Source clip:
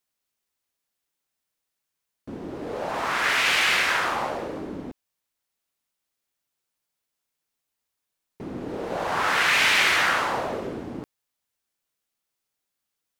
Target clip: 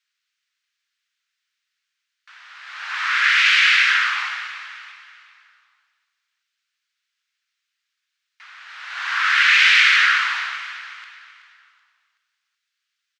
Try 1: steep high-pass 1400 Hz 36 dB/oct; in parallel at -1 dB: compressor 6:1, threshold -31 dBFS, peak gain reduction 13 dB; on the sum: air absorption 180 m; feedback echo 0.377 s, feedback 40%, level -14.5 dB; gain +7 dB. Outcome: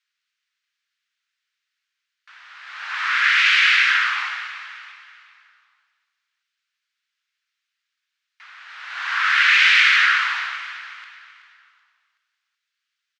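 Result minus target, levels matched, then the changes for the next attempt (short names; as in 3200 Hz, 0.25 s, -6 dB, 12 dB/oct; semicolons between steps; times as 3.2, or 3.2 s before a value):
8000 Hz band -2.5 dB
add after steep high-pass: high shelf 5600 Hz +6 dB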